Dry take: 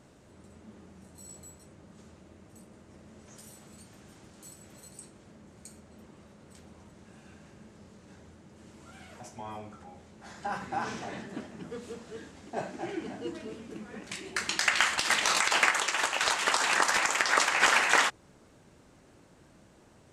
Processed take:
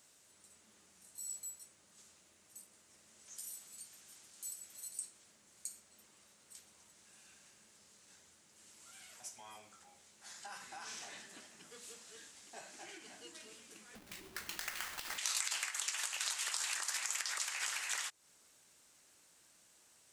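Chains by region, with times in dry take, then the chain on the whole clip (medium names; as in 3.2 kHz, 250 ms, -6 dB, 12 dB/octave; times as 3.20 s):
13.95–15.18 s: square wave that keeps the level + tilt EQ -4 dB/octave
whole clip: compression 4:1, threshold -34 dBFS; pre-emphasis filter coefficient 0.97; trim +5 dB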